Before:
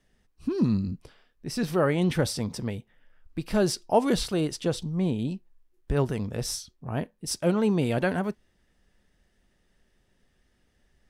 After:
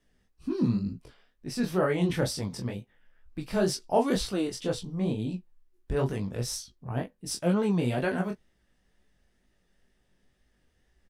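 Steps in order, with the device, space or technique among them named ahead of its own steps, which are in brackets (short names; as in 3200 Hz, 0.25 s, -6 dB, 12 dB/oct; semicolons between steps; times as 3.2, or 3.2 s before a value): double-tracked vocal (doubler 16 ms -8 dB; chorus 2.1 Hz, delay 18.5 ms, depth 6.8 ms)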